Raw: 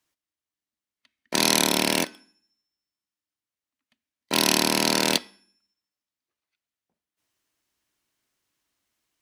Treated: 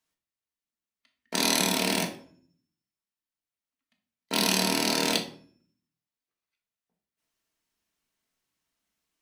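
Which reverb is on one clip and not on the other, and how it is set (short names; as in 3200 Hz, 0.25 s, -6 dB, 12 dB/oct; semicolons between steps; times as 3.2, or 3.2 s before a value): shoebox room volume 500 m³, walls furnished, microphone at 1.6 m; gain -5.5 dB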